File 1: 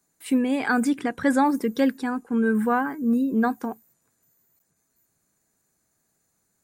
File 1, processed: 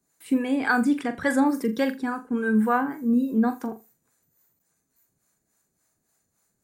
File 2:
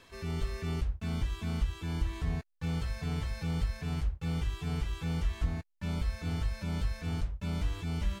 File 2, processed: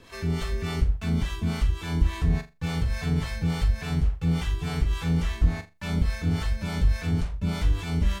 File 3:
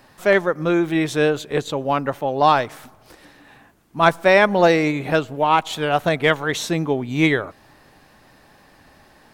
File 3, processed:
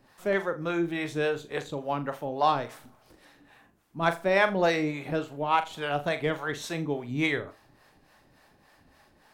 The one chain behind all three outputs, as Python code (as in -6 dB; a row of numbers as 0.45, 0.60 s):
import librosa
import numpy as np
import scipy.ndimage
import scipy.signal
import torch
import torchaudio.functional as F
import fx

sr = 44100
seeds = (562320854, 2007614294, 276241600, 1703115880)

p1 = fx.harmonic_tremolo(x, sr, hz=3.5, depth_pct=70, crossover_hz=500.0)
p2 = p1 + fx.room_flutter(p1, sr, wall_m=7.1, rt60_s=0.24, dry=0)
y = librosa.util.normalize(p2) * 10.0 ** (-9 / 20.0)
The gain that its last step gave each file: +2.0, +10.5, -6.5 dB